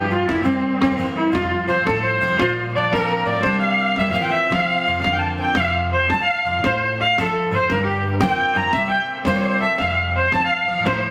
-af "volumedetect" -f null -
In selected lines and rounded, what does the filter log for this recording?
mean_volume: -19.6 dB
max_volume: -4.7 dB